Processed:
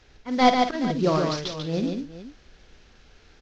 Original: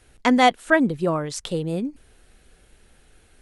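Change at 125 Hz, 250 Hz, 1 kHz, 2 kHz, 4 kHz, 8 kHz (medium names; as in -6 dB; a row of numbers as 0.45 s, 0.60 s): +0.5 dB, -2.5 dB, -1.0 dB, -8.5 dB, 0.0 dB, -5.0 dB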